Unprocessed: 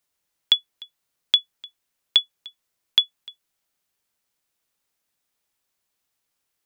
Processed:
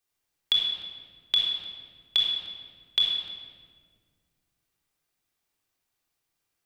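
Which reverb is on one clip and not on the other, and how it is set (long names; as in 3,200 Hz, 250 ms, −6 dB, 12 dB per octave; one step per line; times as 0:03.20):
rectangular room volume 2,500 cubic metres, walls mixed, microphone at 3.7 metres
level −7 dB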